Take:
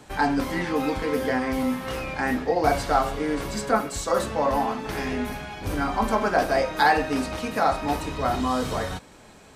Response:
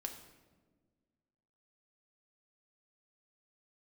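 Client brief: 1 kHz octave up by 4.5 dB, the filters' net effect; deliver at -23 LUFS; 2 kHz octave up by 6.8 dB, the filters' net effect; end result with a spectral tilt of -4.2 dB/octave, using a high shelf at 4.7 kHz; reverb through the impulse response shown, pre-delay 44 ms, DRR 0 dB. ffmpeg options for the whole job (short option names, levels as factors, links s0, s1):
-filter_complex "[0:a]equalizer=f=1000:t=o:g=4.5,equalizer=f=2000:t=o:g=6.5,highshelf=f=4700:g=4,asplit=2[s0][s1];[1:a]atrim=start_sample=2205,adelay=44[s2];[s1][s2]afir=irnorm=-1:irlink=0,volume=1.26[s3];[s0][s3]amix=inputs=2:normalize=0,volume=0.596"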